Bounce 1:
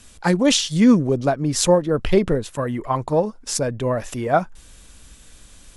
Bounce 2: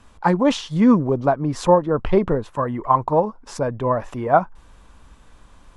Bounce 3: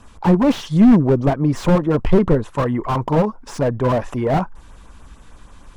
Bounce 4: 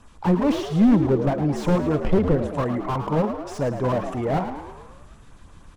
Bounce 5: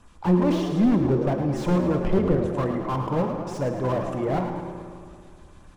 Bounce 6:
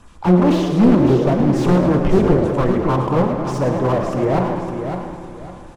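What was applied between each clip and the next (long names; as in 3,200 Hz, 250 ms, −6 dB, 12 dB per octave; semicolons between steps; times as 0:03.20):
low-pass filter 1,400 Hz 6 dB per octave; parametric band 1,000 Hz +11 dB 0.83 octaves; level −1 dB
auto-filter notch sine 6.6 Hz 500–4,700 Hz; slew-rate limiting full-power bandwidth 55 Hz; level +6 dB
echo with shifted repeats 109 ms, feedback 57%, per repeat +71 Hz, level −9.5 dB; level −5.5 dB
convolution reverb RT60 2.3 s, pre-delay 3 ms, DRR 6.5 dB; level −3 dB
repeating echo 557 ms, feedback 29%, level −7.5 dB; highs frequency-modulated by the lows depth 0.44 ms; level +7 dB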